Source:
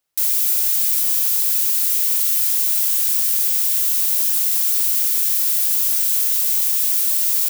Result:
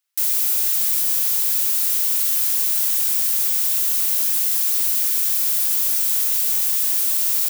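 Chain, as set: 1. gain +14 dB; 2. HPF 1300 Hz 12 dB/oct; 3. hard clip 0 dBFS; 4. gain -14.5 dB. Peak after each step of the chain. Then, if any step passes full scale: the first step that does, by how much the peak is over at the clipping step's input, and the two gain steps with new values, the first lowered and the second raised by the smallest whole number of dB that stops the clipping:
+10.0, +10.0, 0.0, -14.5 dBFS; step 1, 10.0 dB; step 1 +4 dB, step 4 -4.5 dB

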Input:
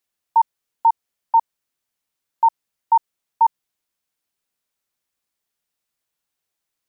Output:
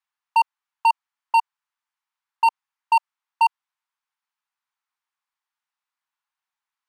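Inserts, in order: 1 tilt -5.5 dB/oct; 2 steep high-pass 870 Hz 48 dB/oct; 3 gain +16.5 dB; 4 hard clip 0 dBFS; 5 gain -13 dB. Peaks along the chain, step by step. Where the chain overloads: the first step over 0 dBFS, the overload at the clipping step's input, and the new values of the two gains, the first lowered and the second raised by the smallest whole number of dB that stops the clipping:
-7.5, -9.5, +7.0, 0.0, -13.0 dBFS; step 3, 7.0 dB; step 3 +9.5 dB, step 5 -6 dB

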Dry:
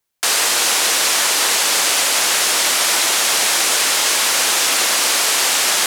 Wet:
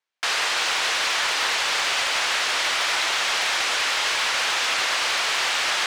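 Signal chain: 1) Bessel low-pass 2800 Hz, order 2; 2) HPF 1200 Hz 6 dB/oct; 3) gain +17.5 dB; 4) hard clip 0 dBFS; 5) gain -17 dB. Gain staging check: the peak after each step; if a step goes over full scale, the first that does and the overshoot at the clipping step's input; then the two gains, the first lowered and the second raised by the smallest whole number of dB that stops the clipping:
-8.5, -10.5, +7.0, 0.0, -17.0 dBFS; step 3, 7.0 dB; step 3 +10.5 dB, step 5 -10 dB

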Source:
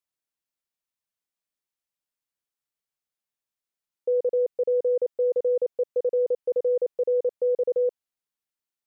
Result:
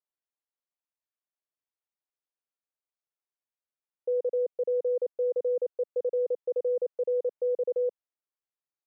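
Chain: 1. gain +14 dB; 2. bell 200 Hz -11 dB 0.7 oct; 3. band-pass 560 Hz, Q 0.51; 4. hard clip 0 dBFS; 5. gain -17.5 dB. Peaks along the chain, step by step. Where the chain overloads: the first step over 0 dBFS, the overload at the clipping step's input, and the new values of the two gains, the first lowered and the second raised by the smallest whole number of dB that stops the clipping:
-5.0, -5.5, -5.5, -5.5, -23.0 dBFS; no overload

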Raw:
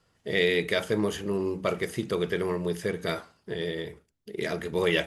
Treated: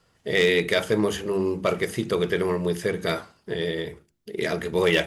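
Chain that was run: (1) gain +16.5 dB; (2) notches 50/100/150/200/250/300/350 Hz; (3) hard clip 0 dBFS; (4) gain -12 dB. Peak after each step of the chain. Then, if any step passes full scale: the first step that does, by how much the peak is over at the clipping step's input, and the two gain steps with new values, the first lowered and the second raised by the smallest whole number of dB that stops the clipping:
+5.0, +5.0, 0.0, -12.0 dBFS; step 1, 5.0 dB; step 1 +11.5 dB, step 4 -7 dB

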